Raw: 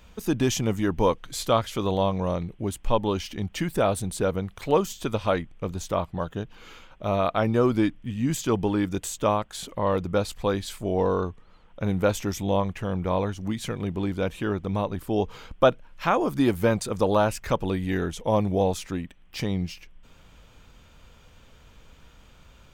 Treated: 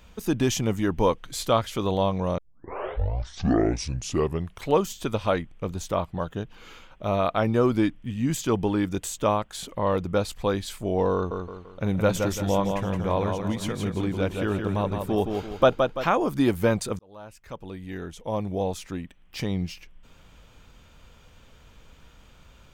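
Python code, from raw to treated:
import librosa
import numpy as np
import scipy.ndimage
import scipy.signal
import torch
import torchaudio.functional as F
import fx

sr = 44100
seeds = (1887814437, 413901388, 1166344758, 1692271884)

y = fx.echo_feedback(x, sr, ms=169, feedback_pct=40, wet_db=-5.0, at=(11.14, 16.05))
y = fx.edit(y, sr, fx.tape_start(start_s=2.38, length_s=2.3),
    fx.fade_in_span(start_s=16.99, length_s=2.69), tone=tone)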